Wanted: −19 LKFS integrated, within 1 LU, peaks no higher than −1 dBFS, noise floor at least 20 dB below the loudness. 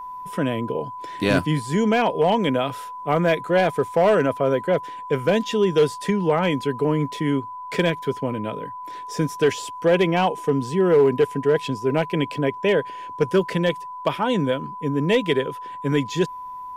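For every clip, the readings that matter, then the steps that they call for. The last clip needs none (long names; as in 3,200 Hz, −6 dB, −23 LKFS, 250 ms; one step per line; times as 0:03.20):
share of clipped samples 0.3%; peaks flattened at −10.5 dBFS; interfering tone 1,000 Hz; level of the tone −32 dBFS; integrated loudness −22.0 LKFS; sample peak −10.5 dBFS; target loudness −19.0 LKFS
→ clipped peaks rebuilt −10.5 dBFS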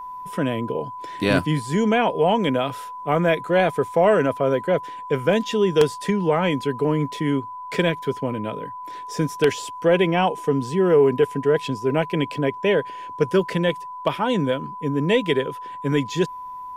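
share of clipped samples 0.0%; interfering tone 1,000 Hz; level of the tone −32 dBFS
→ notch filter 1,000 Hz, Q 30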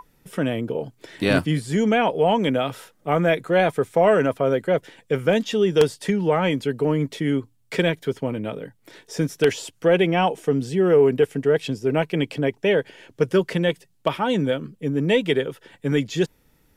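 interfering tone none found; integrated loudness −22.0 LKFS; sample peak −2.0 dBFS; target loudness −19.0 LKFS
→ level +3 dB
brickwall limiter −1 dBFS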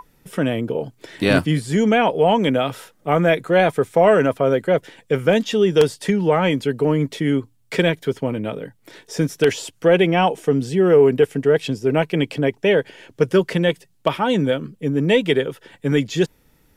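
integrated loudness −19.0 LKFS; sample peak −1.0 dBFS; background noise floor −59 dBFS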